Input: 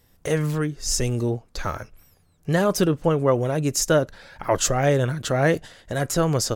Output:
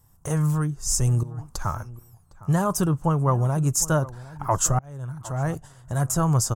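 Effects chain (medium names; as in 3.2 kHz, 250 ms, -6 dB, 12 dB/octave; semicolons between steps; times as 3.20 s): graphic EQ 125/250/500/1000/2000/4000/8000 Hz +7/-5/-10/+8/-9/-12/+6 dB; 1.23–1.63 s: compressor with a negative ratio -33 dBFS, ratio -1; peaking EQ 2.3 kHz -2.5 dB; 4.79–6.00 s: fade in; echo from a far wall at 130 m, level -18 dB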